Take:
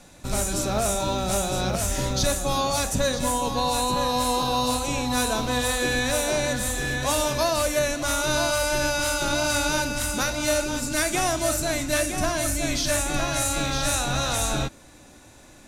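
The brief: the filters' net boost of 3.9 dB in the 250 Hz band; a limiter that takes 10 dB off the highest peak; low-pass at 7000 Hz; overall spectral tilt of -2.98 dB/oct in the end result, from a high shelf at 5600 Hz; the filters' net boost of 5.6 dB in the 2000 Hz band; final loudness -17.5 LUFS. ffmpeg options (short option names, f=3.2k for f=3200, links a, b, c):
-af "lowpass=7k,equalizer=f=250:t=o:g=4.5,equalizer=f=2k:t=o:g=7,highshelf=f=5.6k:g=6,volume=9.5dB,alimiter=limit=-9.5dB:level=0:latency=1"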